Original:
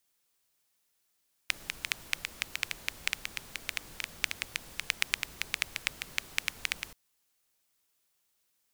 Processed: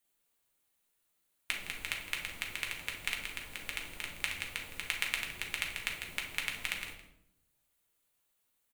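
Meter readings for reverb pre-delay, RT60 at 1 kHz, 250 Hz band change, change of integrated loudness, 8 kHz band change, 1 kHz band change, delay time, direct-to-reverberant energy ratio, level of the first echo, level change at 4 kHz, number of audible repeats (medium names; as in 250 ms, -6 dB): 4 ms, 0.70 s, +0.5 dB, -2.0 dB, -4.0 dB, -0.5 dB, 163 ms, -0.5 dB, -15.0 dB, -2.5 dB, 1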